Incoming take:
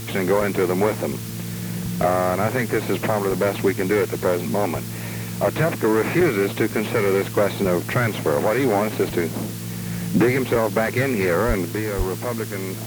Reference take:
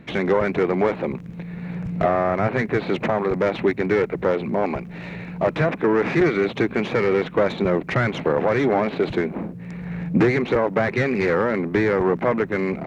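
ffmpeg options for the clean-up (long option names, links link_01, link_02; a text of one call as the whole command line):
ffmpeg -i in.wav -filter_complex "[0:a]bandreject=frequency=112.4:width_type=h:width=4,bandreject=frequency=224.8:width_type=h:width=4,bandreject=frequency=337.2:width_type=h:width=4,bandreject=frequency=449.6:width_type=h:width=4,asplit=3[link_01][link_02][link_03];[link_01]afade=type=out:start_time=11.47:duration=0.02[link_04];[link_02]highpass=frequency=140:width=0.5412,highpass=frequency=140:width=1.3066,afade=type=in:start_time=11.47:duration=0.02,afade=type=out:start_time=11.59:duration=0.02[link_05];[link_03]afade=type=in:start_time=11.59:duration=0.02[link_06];[link_04][link_05][link_06]amix=inputs=3:normalize=0,asplit=3[link_07][link_08][link_09];[link_07]afade=type=out:start_time=11.97:duration=0.02[link_10];[link_08]highpass=frequency=140:width=0.5412,highpass=frequency=140:width=1.3066,afade=type=in:start_time=11.97:duration=0.02,afade=type=out:start_time=12.09:duration=0.02[link_11];[link_09]afade=type=in:start_time=12.09:duration=0.02[link_12];[link_10][link_11][link_12]amix=inputs=3:normalize=0,afwtdn=0.014,asetnsamples=nb_out_samples=441:pad=0,asendcmd='11.65 volume volume 6.5dB',volume=0dB" out.wav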